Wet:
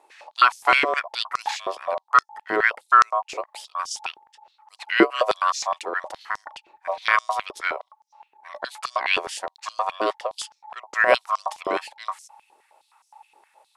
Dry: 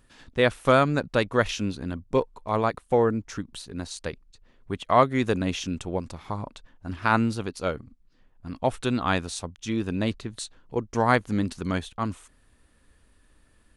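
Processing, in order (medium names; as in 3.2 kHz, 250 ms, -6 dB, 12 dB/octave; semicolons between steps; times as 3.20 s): ring modulator 860 Hz; step-sequenced high-pass 9.6 Hz 380–5700 Hz; trim +2.5 dB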